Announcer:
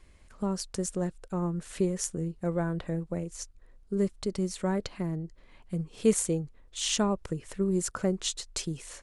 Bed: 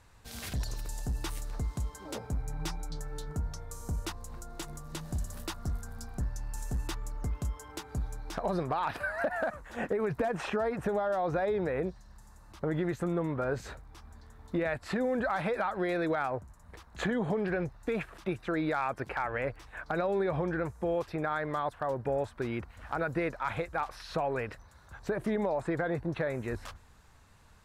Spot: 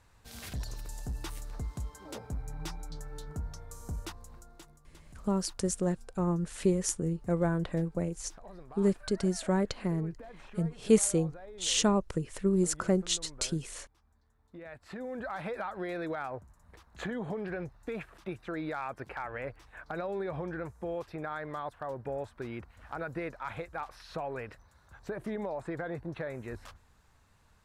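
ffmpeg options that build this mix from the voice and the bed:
-filter_complex "[0:a]adelay=4850,volume=1dB[a];[1:a]volume=9.5dB,afade=t=out:st=4:d=0.79:silence=0.177828,afade=t=in:st=14.53:d=0.98:silence=0.223872[b];[a][b]amix=inputs=2:normalize=0"

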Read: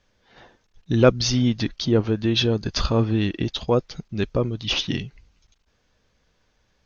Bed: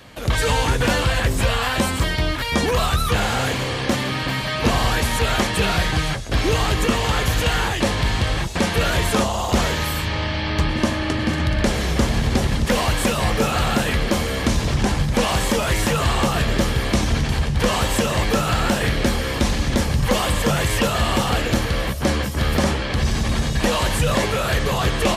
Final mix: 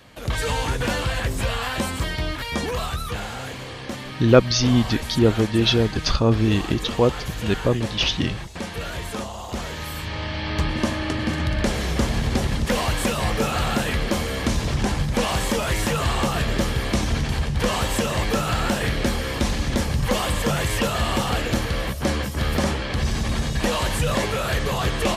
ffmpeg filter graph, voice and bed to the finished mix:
-filter_complex "[0:a]adelay=3300,volume=2dB[a];[1:a]volume=3dB,afade=t=out:st=2.38:d=0.96:silence=0.501187,afade=t=in:st=9.63:d=0.97:silence=0.398107[b];[a][b]amix=inputs=2:normalize=0"

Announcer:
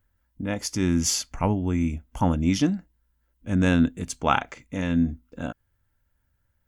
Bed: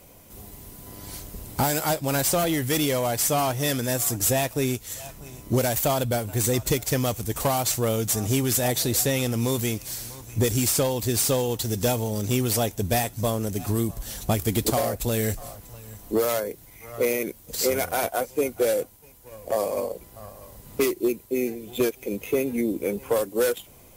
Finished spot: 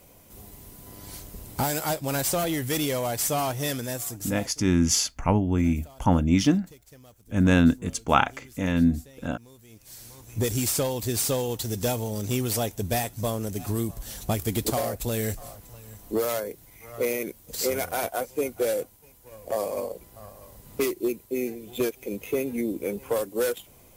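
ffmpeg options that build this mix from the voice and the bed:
-filter_complex "[0:a]adelay=3850,volume=1.5dB[a];[1:a]volume=21dB,afade=t=out:st=3.6:d=0.96:silence=0.0630957,afade=t=in:st=9.68:d=0.81:silence=0.0630957[b];[a][b]amix=inputs=2:normalize=0"

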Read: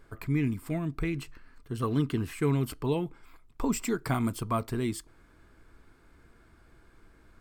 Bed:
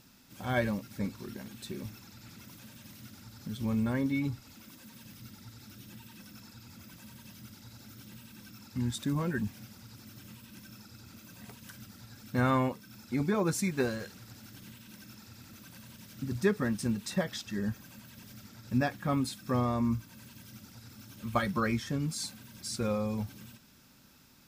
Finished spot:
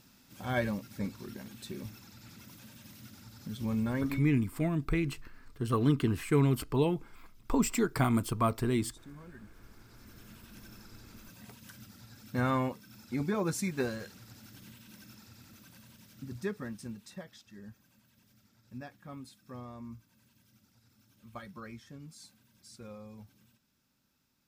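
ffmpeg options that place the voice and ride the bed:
-filter_complex "[0:a]adelay=3900,volume=1dB[a];[1:a]volume=15dB,afade=t=out:st=4.03:d=0.26:silence=0.133352,afade=t=in:st=9.48:d=1.01:silence=0.149624,afade=t=out:st=15.03:d=2.29:silence=0.211349[b];[a][b]amix=inputs=2:normalize=0"

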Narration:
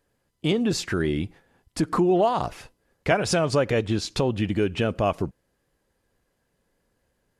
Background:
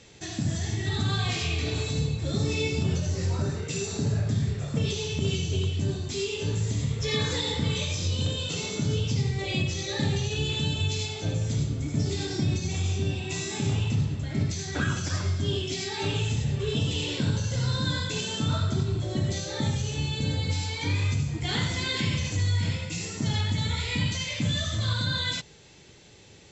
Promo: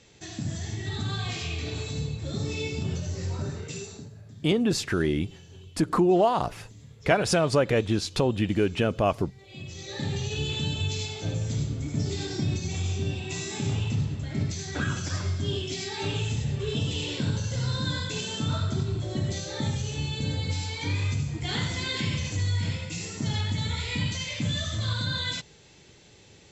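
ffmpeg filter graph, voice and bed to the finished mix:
-filter_complex "[0:a]adelay=4000,volume=-0.5dB[a];[1:a]volume=15dB,afade=t=out:st=3.67:d=0.43:silence=0.149624,afade=t=in:st=9.48:d=0.84:silence=0.112202[b];[a][b]amix=inputs=2:normalize=0"

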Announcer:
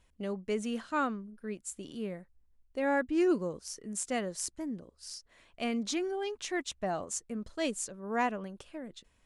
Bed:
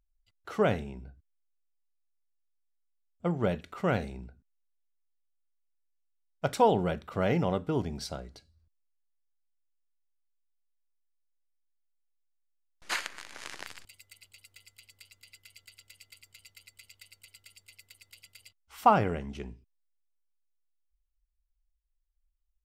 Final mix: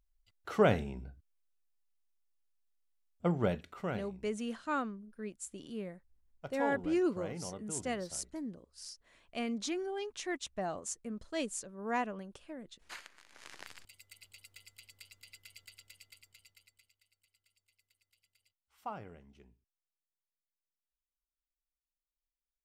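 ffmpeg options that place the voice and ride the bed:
-filter_complex "[0:a]adelay=3750,volume=-3.5dB[a];[1:a]volume=15dB,afade=t=out:st=3.18:d=0.91:silence=0.16788,afade=t=in:st=13.24:d=1.07:silence=0.177828,afade=t=out:st=15.63:d=1.33:silence=0.1[b];[a][b]amix=inputs=2:normalize=0"

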